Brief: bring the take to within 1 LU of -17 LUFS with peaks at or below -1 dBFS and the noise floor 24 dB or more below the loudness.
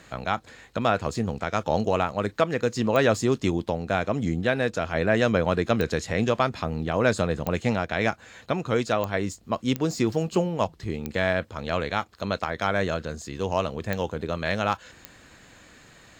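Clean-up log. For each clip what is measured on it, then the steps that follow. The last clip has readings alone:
clicks found 8; loudness -26.0 LUFS; peak level -8.5 dBFS; loudness target -17.0 LUFS
-> de-click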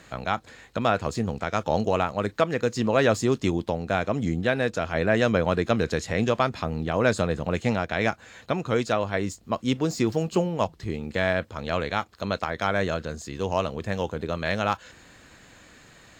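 clicks found 0; loudness -26.0 LUFS; peak level -8.5 dBFS; loudness target -17.0 LUFS
-> trim +9 dB; peak limiter -1 dBFS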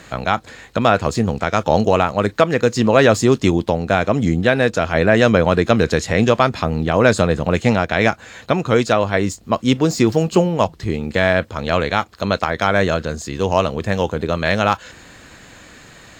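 loudness -17.5 LUFS; peak level -1.0 dBFS; noise floor -44 dBFS

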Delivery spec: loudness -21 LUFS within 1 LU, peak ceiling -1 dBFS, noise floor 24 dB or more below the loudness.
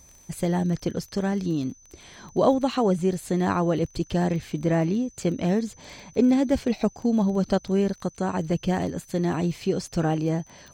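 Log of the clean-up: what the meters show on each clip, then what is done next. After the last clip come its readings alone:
tick rate 22 per s; steady tone 6.1 kHz; tone level -52 dBFS; loudness -25.0 LUFS; peak level -8.0 dBFS; loudness target -21.0 LUFS
-> de-click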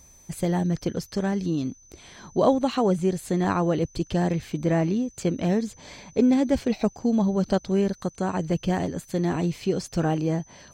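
tick rate 0.093 per s; steady tone 6.1 kHz; tone level -52 dBFS
-> band-stop 6.1 kHz, Q 30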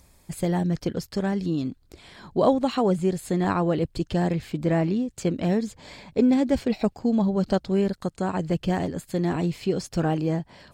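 steady tone not found; loudness -25.5 LUFS; peak level -8.0 dBFS; loudness target -21.0 LUFS
-> trim +4.5 dB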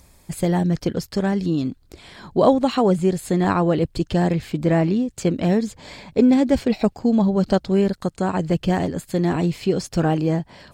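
loudness -21.0 LUFS; peak level -3.5 dBFS; noise floor -54 dBFS

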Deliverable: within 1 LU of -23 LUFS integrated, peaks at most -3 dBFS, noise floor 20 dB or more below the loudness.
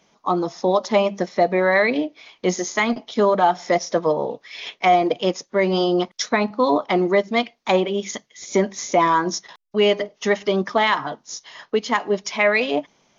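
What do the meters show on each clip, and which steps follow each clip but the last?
loudness -20.5 LUFS; peak level -6.5 dBFS; loudness target -23.0 LUFS
-> trim -2.5 dB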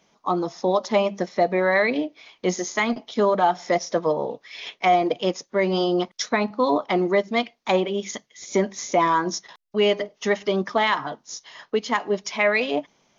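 loudness -23.0 LUFS; peak level -9.0 dBFS; noise floor -68 dBFS

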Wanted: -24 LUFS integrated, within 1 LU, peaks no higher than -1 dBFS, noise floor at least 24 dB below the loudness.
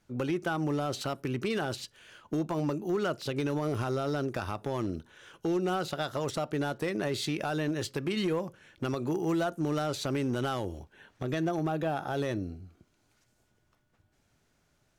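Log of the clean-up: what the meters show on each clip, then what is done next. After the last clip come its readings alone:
clipped samples 1.4%; clipping level -23.5 dBFS; loudness -32.0 LUFS; peak level -23.5 dBFS; loudness target -24.0 LUFS
-> clip repair -23.5 dBFS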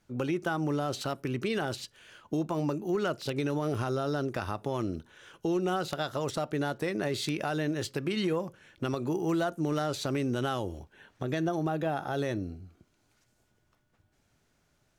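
clipped samples 0.0%; loudness -32.0 LUFS; peak level -14.5 dBFS; loudness target -24.0 LUFS
-> trim +8 dB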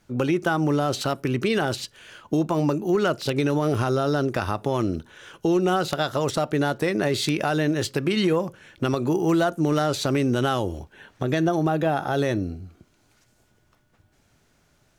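loudness -24.0 LUFS; peak level -6.5 dBFS; noise floor -64 dBFS

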